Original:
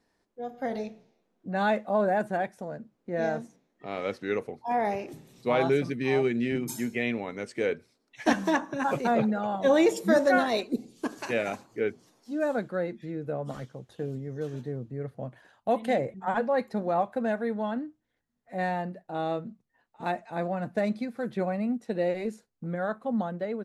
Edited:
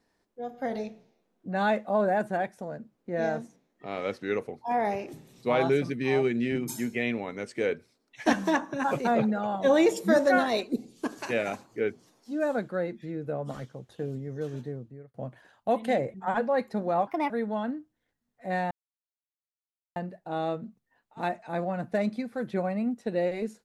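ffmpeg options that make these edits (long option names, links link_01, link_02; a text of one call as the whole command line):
ffmpeg -i in.wav -filter_complex "[0:a]asplit=5[link_01][link_02][link_03][link_04][link_05];[link_01]atrim=end=15.14,asetpts=PTS-STARTPTS,afade=type=out:start_time=14.61:duration=0.53[link_06];[link_02]atrim=start=15.14:end=17.074,asetpts=PTS-STARTPTS,afade=type=in:duration=0.004:curve=hsin[link_07];[link_03]atrim=start=17.07:end=17.38,asetpts=PTS-STARTPTS,asetrate=59535,aresample=44100[link_08];[link_04]atrim=start=17.376:end=18.79,asetpts=PTS-STARTPTS,afade=type=out:start_time=1.41:duration=0.004:curve=hsin,apad=pad_dur=1.25[link_09];[link_05]atrim=start=18.79,asetpts=PTS-STARTPTS,afade=type=in:duration=0.004:curve=hsin[link_10];[link_06][link_07]concat=n=2:v=0:a=1[link_11];[link_11][link_08]acrossfade=duration=0.004:curve1=hsin:curve2=hsin[link_12];[link_09][link_10]concat=n=2:v=0:a=1[link_13];[link_12][link_13]acrossfade=duration=0.004:curve1=hsin:curve2=hsin" out.wav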